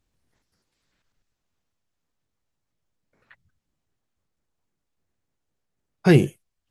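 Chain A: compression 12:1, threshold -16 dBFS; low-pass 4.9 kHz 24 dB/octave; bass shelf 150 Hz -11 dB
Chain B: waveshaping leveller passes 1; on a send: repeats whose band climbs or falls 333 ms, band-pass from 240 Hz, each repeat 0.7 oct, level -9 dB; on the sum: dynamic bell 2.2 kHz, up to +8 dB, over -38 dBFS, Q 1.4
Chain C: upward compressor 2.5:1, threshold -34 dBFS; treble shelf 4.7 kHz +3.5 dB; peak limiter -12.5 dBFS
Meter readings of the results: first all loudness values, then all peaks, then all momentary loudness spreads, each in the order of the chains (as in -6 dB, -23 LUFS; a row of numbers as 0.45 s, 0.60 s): -28.5 LUFS, -17.5 LUFS, -25.0 LUFS; -11.0 dBFS, -2.0 dBFS, -12.5 dBFS; 8 LU, 11 LU, 7 LU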